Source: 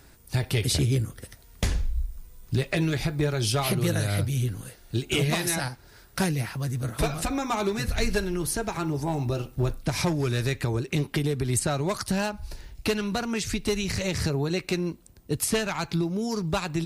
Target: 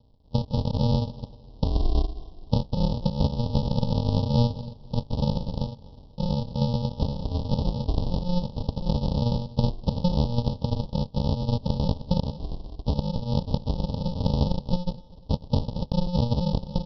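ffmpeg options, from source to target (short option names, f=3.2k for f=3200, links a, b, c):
-af "dynaudnorm=f=170:g=5:m=11dB,alimiter=limit=-13dB:level=0:latency=1:release=272,aeval=exprs='0.224*(cos(1*acos(clip(val(0)/0.224,-1,1)))-cos(1*PI/2))+0.0447*(cos(3*acos(clip(val(0)/0.224,-1,1)))-cos(3*PI/2))+0.00562*(cos(5*acos(clip(val(0)/0.224,-1,1)))-cos(5*PI/2))+0.00794*(cos(6*acos(clip(val(0)/0.224,-1,1)))-cos(6*PI/2))+0.0112*(cos(8*acos(clip(val(0)/0.224,-1,1)))-cos(8*PI/2))':c=same,aresample=11025,acrusher=samples=31:mix=1:aa=0.000001,aresample=44100,asuperstop=centerf=1800:order=8:qfactor=0.78,aecho=1:1:247|494|741:0.0841|0.0294|0.0103"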